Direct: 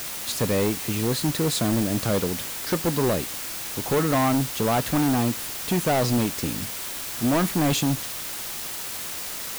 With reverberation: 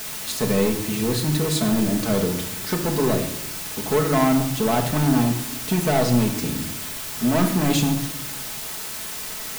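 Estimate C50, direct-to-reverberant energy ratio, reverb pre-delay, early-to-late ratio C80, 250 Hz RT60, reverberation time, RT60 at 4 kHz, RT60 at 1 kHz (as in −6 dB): 8.5 dB, 1.5 dB, 5 ms, 11.0 dB, 1.2 s, 0.80 s, 0.55 s, 0.75 s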